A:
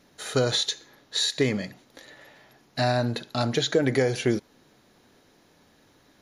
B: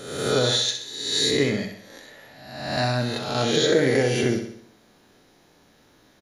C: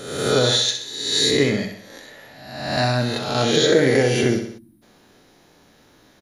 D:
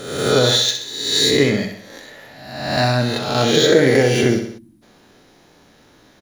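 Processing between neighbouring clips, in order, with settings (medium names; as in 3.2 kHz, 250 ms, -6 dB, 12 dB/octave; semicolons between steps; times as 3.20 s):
reverse spectral sustain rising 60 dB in 1.01 s; feedback delay 64 ms, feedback 50%, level -7.5 dB; trim -1 dB
time-frequency box 4.58–4.82 s, 350–8000 Hz -24 dB; trim +3.5 dB
median filter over 3 samples; trim +3 dB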